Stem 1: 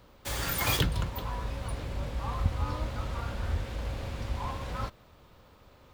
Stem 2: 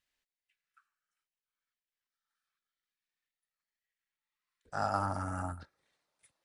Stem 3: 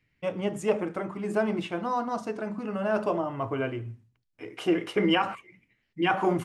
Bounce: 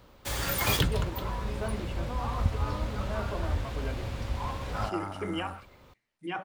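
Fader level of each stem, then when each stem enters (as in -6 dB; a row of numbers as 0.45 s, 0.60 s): +1.0 dB, -4.0 dB, -10.5 dB; 0.00 s, 0.00 s, 0.25 s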